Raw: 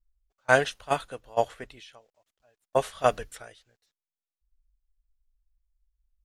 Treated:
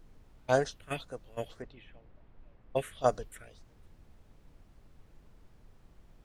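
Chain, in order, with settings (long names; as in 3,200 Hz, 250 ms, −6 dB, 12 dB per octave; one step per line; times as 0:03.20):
all-pass phaser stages 4, 2 Hz, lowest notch 780–3,000 Hz
background noise brown −52 dBFS
0:01.62–0:03.01: low-pass that shuts in the quiet parts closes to 2,000 Hz, open at −29.5 dBFS
level −3 dB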